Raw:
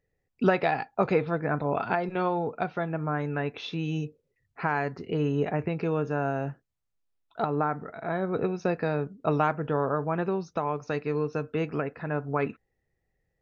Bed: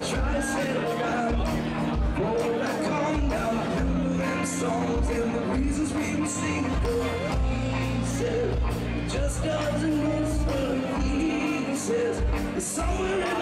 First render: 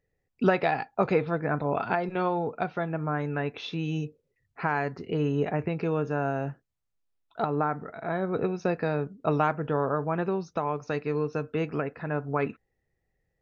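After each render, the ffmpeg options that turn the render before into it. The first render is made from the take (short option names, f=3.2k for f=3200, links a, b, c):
-af anull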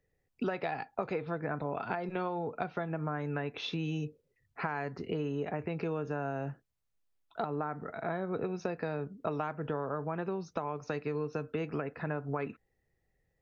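-filter_complex "[0:a]acrossover=split=250[a][b];[a]alimiter=level_in=6dB:limit=-24dB:level=0:latency=1,volume=-6dB[c];[c][b]amix=inputs=2:normalize=0,acompressor=threshold=-31dB:ratio=6"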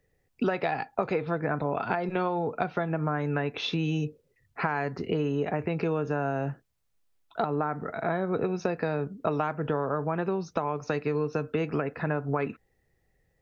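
-af "volume=6.5dB"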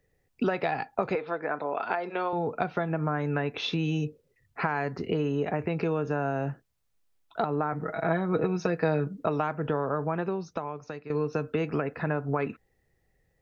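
-filter_complex "[0:a]asettb=1/sr,asplit=3[a][b][c];[a]atrim=end=1.154[d];[b]atrim=start=1.15:end=2.33,asetpts=PTS-STARTPTS,afade=t=in:d=0.004:c=qsin,afade=t=out:st=1.176:d=0.004:c=qsin,highpass=390,lowpass=5.7k[e];[c]atrim=start=2.326[f];[d][e]acrossfade=d=0.004:c1=hsin:c2=qsin[g];[g][f]acrossfade=d=0.004:c1=qsin:c2=hsin,asettb=1/sr,asplit=3[h][i][j];[h]atrim=end=7.724[k];[i]atrim=start=7.72:end=9.23,asetpts=PTS-STARTPTS,afade=t=in:d=0.004:c=qsin,afade=t=out:st=1.506:d=0.004:c=qsin,aecho=1:1:6.3:0.65,atrim=end_sample=66591[l];[j]atrim=start=9.226[m];[k][l]acrossfade=d=0.004:c1=hsin:c2=qsin[n];[n][m]acrossfade=d=0.004:c1=qsin:c2=hsin,asplit=2[o][p];[o]atrim=end=11.1,asetpts=PTS-STARTPTS,afade=t=out:st=10.09:d=1.01:silence=0.199526[q];[p]atrim=start=11.1,asetpts=PTS-STARTPTS,afade=t=in:d=0.004:c=hsin:silence=0.199526[r];[q][r]concat=n=2:v=0:a=1"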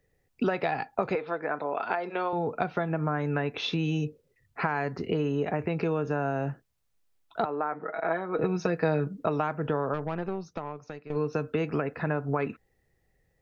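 -filter_complex "[0:a]asettb=1/sr,asplit=3[a][b][c];[a]atrim=end=7.454[d];[b]atrim=start=7.45:end=8.39,asetpts=PTS-STARTPTS,afade=t=in:d=0.004:c=qsin,afade=t=out:st=0.936:d=0.004:c=qsin,highpass=370,lowpass=3.1k[e];[c]atrim=start=8.386[f];[d][e]acrossfade=d=0.004:c1=hsin:c2=qsin[g];[g][f]acrossfade=d=0.004:c1=qsin:c2=hsin,asplit=3[h][i][j];[h]afade=t=out:st=9.93:d=0.02[k];[i]aeval=exprs='(tanh(15.8*val(0)+0.6)-tanh(0.6))/15.8':c=same,afade=t=in:st=9.93:d=0.02,afade=t=out:st=11.15:d=0.02[l];[j]afade=t=in:st=11.15:d=0.02[m];[k][l][m]amix=inputs=3:normalize=0"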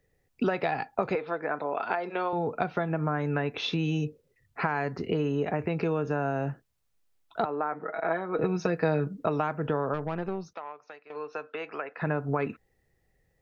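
-filter_complex "[0:a]asettb=1/sr,asplit=3[a][b][c];[a]atrim=end=10.534[d];[b]atrim=start=10.53:end=12.02,asetpts=PTS-STARTPTS,afade=t=in:d=0.004:c=qsin,afade=t=out:st=1.486:d=0.004:c=qsin,highpass=680,lowpass=3.9k[e];[c]atrim=start=12.016[f];[d][e]acrossfade=d=0.004:c1=hsin:c2=qsin[g];[g][f]acrossfade=d=0.004:c1=qsin:c2=hsin"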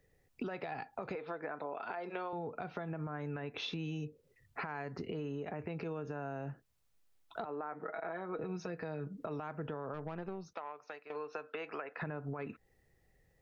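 -af "alimiter=limit=-21dB:level=0:latency=1:release=58,acompressor=threshold=-39dB:ratio=4"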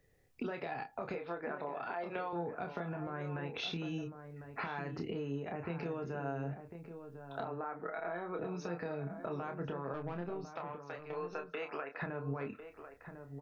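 -filter_complex "[0:a]asplit=2[a][b];[b]adelay=29,volume=-6dB[c];[a][c]amix=inputs=2:normalize=0,asplit=2[d][e];[e]adelay=1050,volume=-9dB,highshelf=f=4k:g=-23.6[f];[d][f]amix=inputs=2:normalize=0"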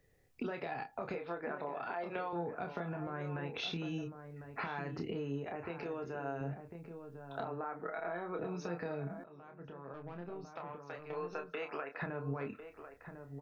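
-filter_complex "[0:a]asettb=1/sr,asplit=3[a][b][c];[a]atrim=end=5.444[d];[b]atrim=start=5.44:end=6.41,asetpts=PTS-STARTPTS,afade=t=in:d=0.004:c=qsin,afade=t=out:st=0.966:d=0.004:c=qsin,equalizer=f=170:t=o:w=0.77:g=-9.5[e];[c]atrim=start=6.406[f];[d][e]acrossfade=d=0.004:c1=hsin:c2=qsin[g];[g][f]acrossfade=d=0.004:c1=qsin:c2=hsin,asplit=2[h][i];[h]atrim=end=9.24,asetpts=PTS-STARTPTS,afade=t=out:st=9.236:d=0.004:c=hsin:silence=0.112202[j];[i]atrim=start=9.24,asetpts=PTS-STARTPTS,afade=t=in:d=1.93:silence=0.112202[k];[j][k]concat=n=2:v=0:a=1"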